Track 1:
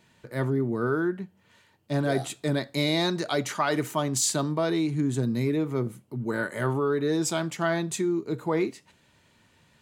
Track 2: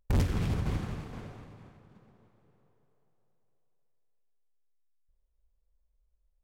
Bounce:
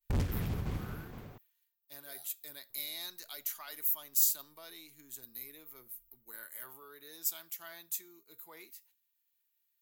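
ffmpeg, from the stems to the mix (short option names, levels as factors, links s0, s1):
-filter_complex "[0:a]aderivative,aexciter=amount=11.6:drive=6.1:freq=12000,volume=0.447[s0];[1:a]volume=0.562,asplit=3[s1][s2][s3];[s1]atrim=end=1.38,asetpts=PTS-STARTPTS,afade=t=out:st=1.376:d=0.004:c=hsin[s4];[s2]atrim=start=1.38:end=2.7,asetpts=PTS-STARTPTS,volume=0[s5];[s3]atrim=start=2.7,asetpts=PTS-STARTPTS,afade=t=in:d=0.004:c=hsin[s6];[s4][s5][s6]concat=n=3:v=0:a=1[s7];[s0][s7]amix=inputs=2:normalize=0,agate=range=0.0224:threshold=0.00141:ratio=3:detection=peak"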